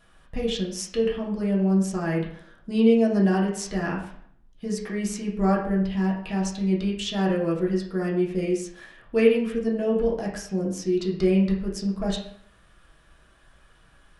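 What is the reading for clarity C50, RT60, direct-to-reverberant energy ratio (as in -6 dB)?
5.5 dB, 0.65 s, -4.0 dB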